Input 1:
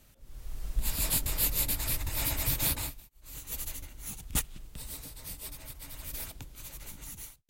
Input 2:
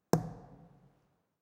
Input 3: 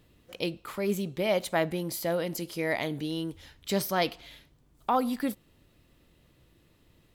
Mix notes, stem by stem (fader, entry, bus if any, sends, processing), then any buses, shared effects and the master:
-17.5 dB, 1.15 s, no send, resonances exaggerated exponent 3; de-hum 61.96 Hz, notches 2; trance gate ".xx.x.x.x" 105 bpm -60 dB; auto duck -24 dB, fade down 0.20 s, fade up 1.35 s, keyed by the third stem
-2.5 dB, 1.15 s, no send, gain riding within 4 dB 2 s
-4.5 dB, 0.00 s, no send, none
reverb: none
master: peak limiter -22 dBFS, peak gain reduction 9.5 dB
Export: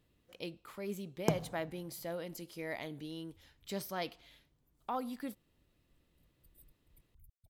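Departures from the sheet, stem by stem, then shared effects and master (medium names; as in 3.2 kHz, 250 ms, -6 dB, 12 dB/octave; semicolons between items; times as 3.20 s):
stem 3 -4.5 dB -> -11.5 dB; master: missing peak limiter -22 dBFS, peak gain reduction 9.5 dB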